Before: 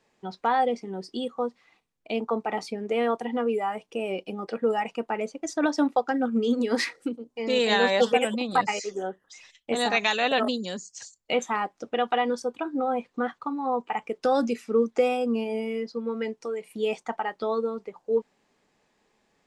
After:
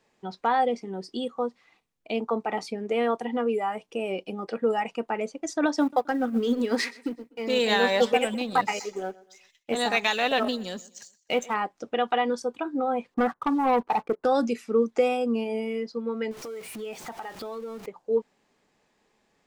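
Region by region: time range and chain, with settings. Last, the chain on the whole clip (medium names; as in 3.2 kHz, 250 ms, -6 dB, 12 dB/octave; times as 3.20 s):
5.80–11.54 s: companding laws mixed up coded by A + feedback delay 125 ms, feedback 37%, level -21 dB
13.14–14.25 s: low-pass 1.5 kHz 24 dB/octave + waveshaping leveller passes 2
16.31–17.86 s: jump at every zero crossing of -37 dBFS + compression 3:1, threshold -36 dBFS
whole clip: none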